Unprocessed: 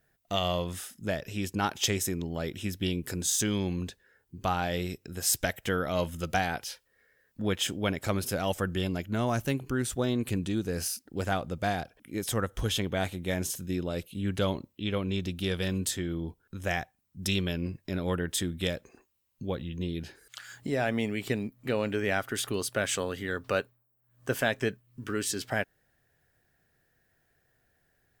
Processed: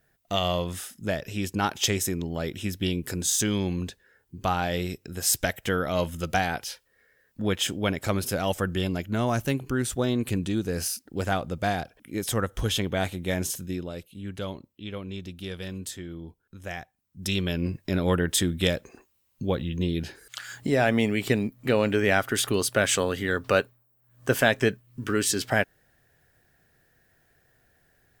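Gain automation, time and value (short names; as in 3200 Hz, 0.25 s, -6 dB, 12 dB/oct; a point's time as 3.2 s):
13.55 s +3 dB
14.05 s -5.5 dB
16.77 s -5.5 dB
17.76 s +6.5 dB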